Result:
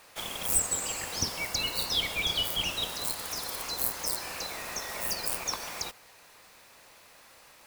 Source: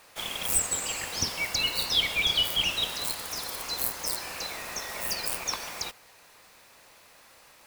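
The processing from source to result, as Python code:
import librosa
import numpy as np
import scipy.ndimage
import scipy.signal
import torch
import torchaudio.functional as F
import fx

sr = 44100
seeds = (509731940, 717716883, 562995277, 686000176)

y = fx.dynamic_eq(x, sr, hz=2700.0, q=0.86, threshold_db=-39.0, ratio=4.0, max_db=-5)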